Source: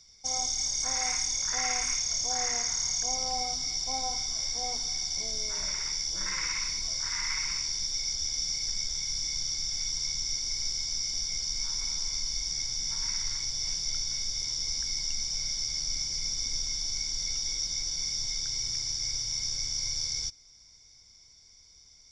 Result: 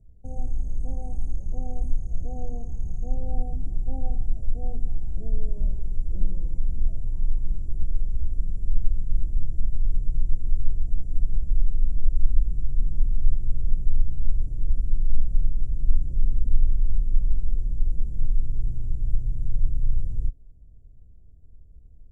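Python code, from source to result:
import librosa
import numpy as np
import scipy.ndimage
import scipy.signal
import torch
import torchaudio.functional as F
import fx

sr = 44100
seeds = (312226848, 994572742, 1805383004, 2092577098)

y = fx.dynamic_eq(x, sr, hz=580.0, q=1.5, threshold_db=-55.0, ratio=4.0, max_db=-4)
y = scipy.signal.sosfilt(scipy.signal.cheby2(4, 40, [1100.0, 5700.0], 'bandstop', fs=sr, output='sos'), y)
y = fx.tilt_eq(y, sr, slope=-4.5)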